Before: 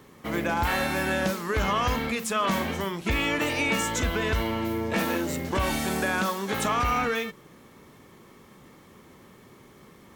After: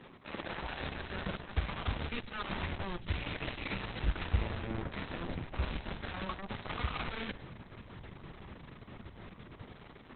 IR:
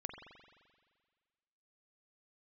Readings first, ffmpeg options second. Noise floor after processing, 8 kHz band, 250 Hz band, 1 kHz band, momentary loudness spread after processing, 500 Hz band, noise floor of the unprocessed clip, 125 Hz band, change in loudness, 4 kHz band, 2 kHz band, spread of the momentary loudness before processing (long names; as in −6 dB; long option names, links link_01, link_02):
−54 dBFS, below −40 dB, −13.5 dB, −14.5 dB, 14 LU, −15.0 dB, −53 dBFS, −5.5 dB, −12.5 dB, −10.5 dB, −13.0 dB, 4 LU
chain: -filter_complex "[0:a]flanger=delay=5.1:depth=6:regen=-33:speed=1.7:shape=sinusoidal,areverse,acompressor=threshold=-43dB:ratio=20,areverse,aeval=exprs='0.0168*(cos(1*acos(clip(val(0)/0.0168,-1,1)))-cos(1*PI/2))+0.00473*(cos(7*acos(clip(val(0)/0.0168,-1,1)))-cos(7*PI/2))':channel_layout=same,equalizer=frequency=12000:width_type=o:width=0.43:gain=-7.5,acrossover=split=110[link_01][link_02];[link_01]dynaudnorm=framelen=330:gausssize=5:maxgain=14.5dB[link_03];[link_03][link_02]amix=inputs=2:normalize=0,volume=8.5dB" -ar 48000 -c:a libopus -b:a 6k